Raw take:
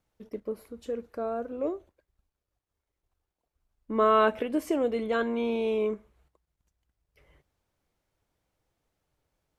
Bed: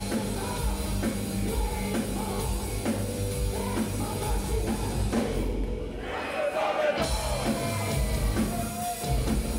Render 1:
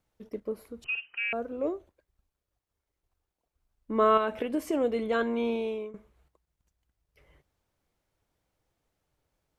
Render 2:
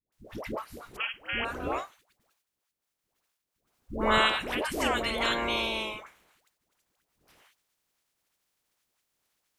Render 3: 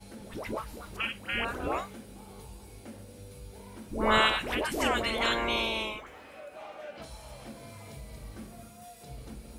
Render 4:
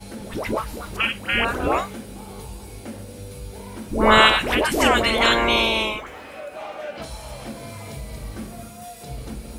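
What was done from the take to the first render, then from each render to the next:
0.84–1.33 inverted band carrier 3000 Hz; 4.17–4.74 compressor, threshold -23 dBFS; 5.48–5.94 fade out, to -19.5 dB
spectral limiter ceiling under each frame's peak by 30 dB; dispersion highs, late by 0.124 s, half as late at 630 Hz
add bed -17.5 dB
gain +10.5 dB; limiter -2 dBFS, peak gain reduction 2 dB

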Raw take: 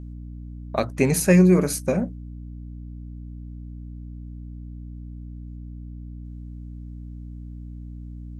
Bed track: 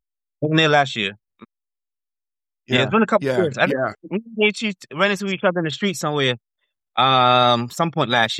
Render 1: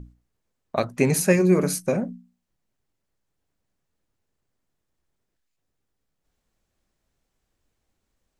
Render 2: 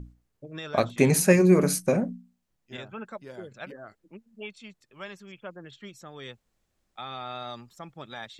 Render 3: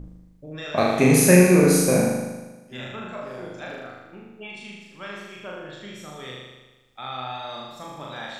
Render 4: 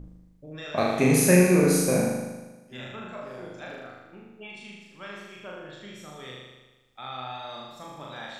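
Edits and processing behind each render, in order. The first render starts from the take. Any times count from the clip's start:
notches 60/120/180/240/300 Hz
add bed track -22.5 dB
spectral trails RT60 0.39 s; flutter echo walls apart 6.7 m, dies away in 1.2 s
gain -4 dB

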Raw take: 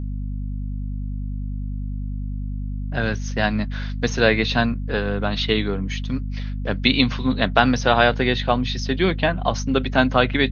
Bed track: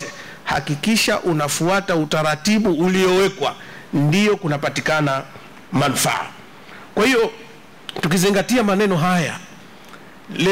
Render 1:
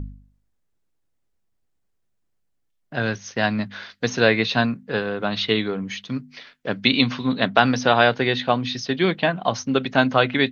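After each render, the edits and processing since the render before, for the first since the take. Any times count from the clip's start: de-hum 50 Hz, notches 5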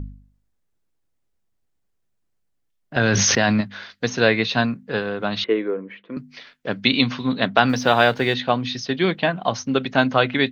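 2.96–3.61 fast leveller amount 100%; 5.44–6.17 speaker cabinet 340–2000 Hz, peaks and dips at 340 Hz +8 dB, 510 Hz +8 dB, 770 Hz -9 dB, 1300 Hz -4 dB, 1800 Hz -3 dB; 7.69–8.34 G.711 law mismatch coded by mu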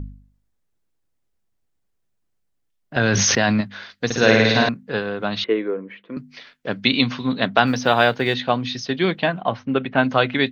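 4.05–4.69 flutter echo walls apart 9.3 m, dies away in 1.3 s; 7.67–8.26 G.711 law mismatch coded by A; 9.41–10.04 LPF 3000 Hz 24 dB/oct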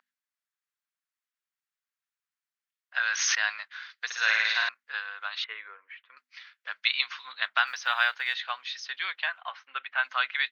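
HPF 1300 Hz 24 dB/oct; high shelf 2500 Hz -10 dB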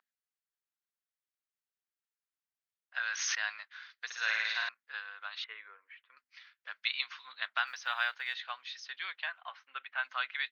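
gain -7.5 dB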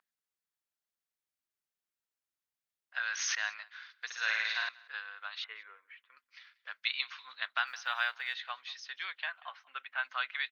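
echo 0.187 s -23.5 dB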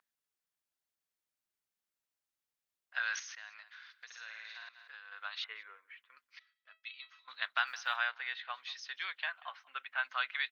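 3.19–5.12 compressor 3:1, threshold -50 dBFS; 6.39–7.28 resonator 650 Hz, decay 0.2 s, mix 90%; 7.96–8.54 air absorption 180 m

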